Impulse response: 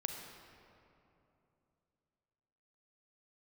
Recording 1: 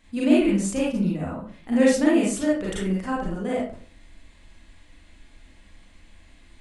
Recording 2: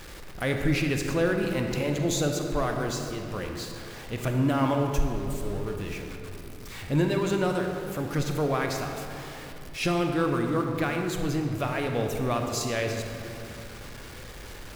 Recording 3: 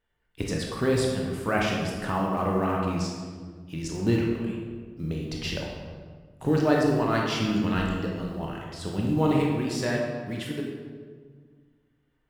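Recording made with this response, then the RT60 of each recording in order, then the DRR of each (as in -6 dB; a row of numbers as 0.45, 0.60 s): 2; 0.45, 2.9, 1.6 s; -6.0, 3.5, -1.5 dB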